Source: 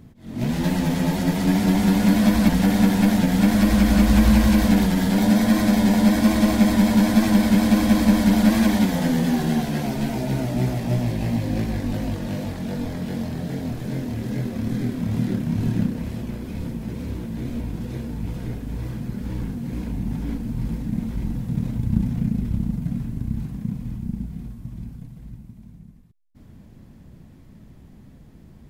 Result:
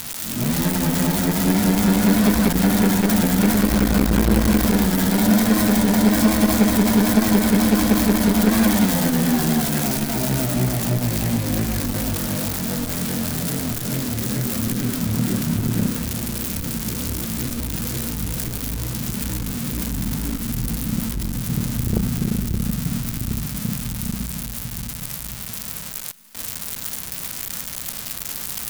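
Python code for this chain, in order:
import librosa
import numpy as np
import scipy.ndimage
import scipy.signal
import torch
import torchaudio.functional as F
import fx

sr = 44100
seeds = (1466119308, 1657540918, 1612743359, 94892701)

p1 = x + 0.5 * 10.0 ** (-15.0 / 20.0) * np.diff(np.sign(x), prepend=np.sign(x[:1]))
p2 = fx.dynamic_eq(p1, sr, hz=1300.0, q=2.8, threshold_db=-47.0, ratio=4.0, max_db=5)
p3 = p2 + fx.echo_thinned(p2, sr, ms=709, feedback_pct=83, hz=320.0, wet_db=-23.0, dry=0)
p4 = fx.transformer_sat(p3, sr, knee_hz=290.0)
y = p4 * 10.0 ** (2.0 / 20.0)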